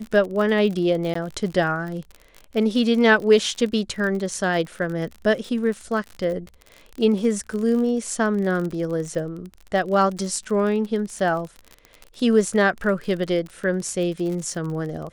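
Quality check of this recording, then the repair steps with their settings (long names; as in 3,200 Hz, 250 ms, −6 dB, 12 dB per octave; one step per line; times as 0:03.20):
surface crackle 40 per second −29 dBFS
0:01.14–0:01.15: drop-out 14 ms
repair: click removal
repair the gap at 0:01.14, 14 ms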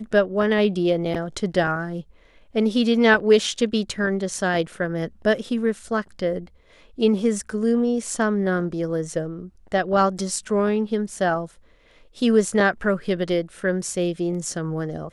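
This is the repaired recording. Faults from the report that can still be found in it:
none of them is left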